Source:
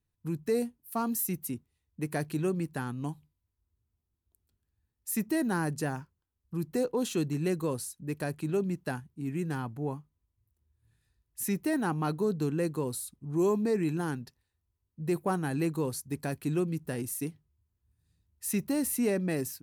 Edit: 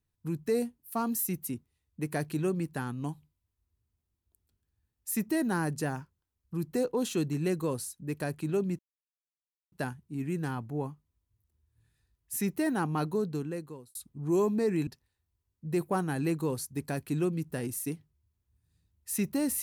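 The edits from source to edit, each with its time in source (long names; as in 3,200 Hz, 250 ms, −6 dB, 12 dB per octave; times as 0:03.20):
0:08.79: splice in silence 0.93 s
0:12.14–0:13.02: fade out
0:13.94–0:14.22: remove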